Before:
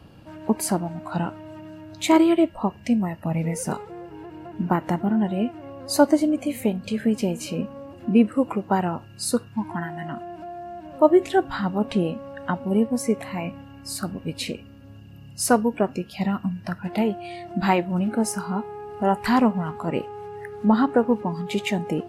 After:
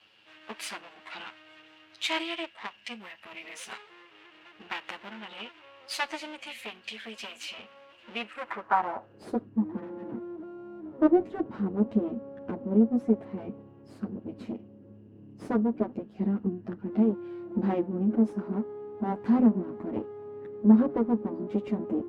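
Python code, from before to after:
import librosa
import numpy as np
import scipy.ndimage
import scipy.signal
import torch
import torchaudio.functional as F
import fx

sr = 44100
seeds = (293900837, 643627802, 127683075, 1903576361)

y = fx.lower_of_two(x, sr, delay_ms=9.2)
y = fx.filter_sweep_bandpass(y, sr, from_hz=2900.0, to_hz=270.0, start_s=8.24, end_s=9.47, q=1.9)
y = F.gain(torch.from_numpy(y), 3.5).numpy()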